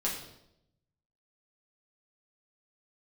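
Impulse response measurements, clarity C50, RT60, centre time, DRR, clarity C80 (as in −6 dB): 5.0 dB, 0.80 s, 37 ms, −5.5 dB, 8.0 dB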